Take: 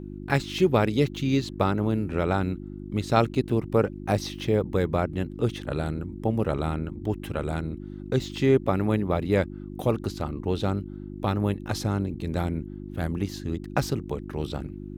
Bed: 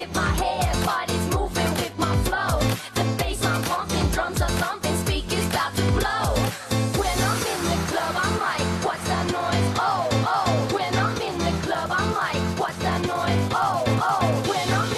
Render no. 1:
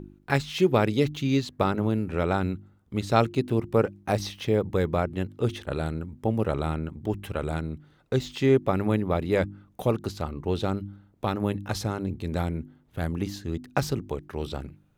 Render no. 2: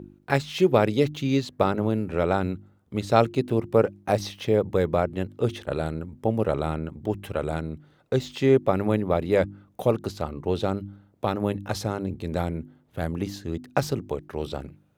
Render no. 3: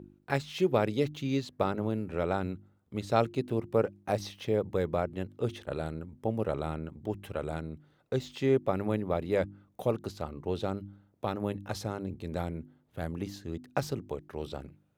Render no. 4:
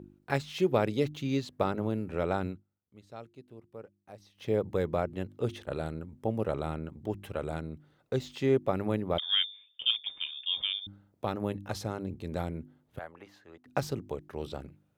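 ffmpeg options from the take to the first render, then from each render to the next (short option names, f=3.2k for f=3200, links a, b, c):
-af "bandreject=f=50:t=h:w=4,bandreject=f=100:t=h:w=4,bandreject=f=150:t=h:w=4,bandreject=f=200:t=h:w=4,bandreject=f=250:t=h:w=4,bandreject=f=300:t=h:w=4,bandreject=f=350:t=h:w=4"
-af "highpass=69,equalizer=f=570:w=1.5:g=4.5"
-af "volume=-7dB"
-filter_complex "[0:a]asettb=1/sr,asplit=3[a][b][c];[a]atrim=end=9.184[d];[b]atrim=start=9.18:end=10.87,asetpts=PTS-STARTPTS,afade=t=in:d=0.004:c=qsin,afade=t=out:st=1.686:d=0.004:c=qsin,lowpass=f=3.1k:t=q:w=0.5098,lowpass=f=3.1k:t=q:w=0.6013,lowpass=f=3.1k:t=q:w=0.9,lowpass=f=3.1k:t=q:w=2.563,afreqshift=-3700[e];[c]atrim=start=10.866[f];[d][e]acrossfade=d=0.004:c1=hsin:c2=qsin[g];[g][f]acrossfade=d=0.004:c1=qsin:c2=hsin,asettb=1/sr,asplit=3[h][i][j];[h]atrim=end=12.994[k];[i]atrim=start=12.99:end=13.66,asetpts=PTS-STARTPTS,afade=t=in:d=0.004:c=qsin,afade=t=out:st=0.666:d=0.004:c=qsin,acrossover=split=560 2400:gain=0.0708 1 0.141[l][m][n];[l][m][n]amix=inputs=3:normalize=0[o];[j]atrim=start=13.656[p];[k][o]acrossfade=d=0.004:c1=hsin:c2=qsin[q];[q][p]acrossfade=d=0.004:c1=qsin:c2=hsin,asplit=3[r][s][t];[r]atrim=end=2.64,asetpts=PTS-STARTPTS,afade=t=out:st=2.47:d=0.17:silence=0.105925[u];[s]atrim=start=2.64:end=4.34,asetpts=PTS-STARTPTS,volume=-19.5dB[v];[t]atrim=start=4.34,asetpts=PTS-STARTPTS,afade=t=in:d=0.17:silence=0.105925[w];[u][v][w]concat=n=3:v=0:a=1"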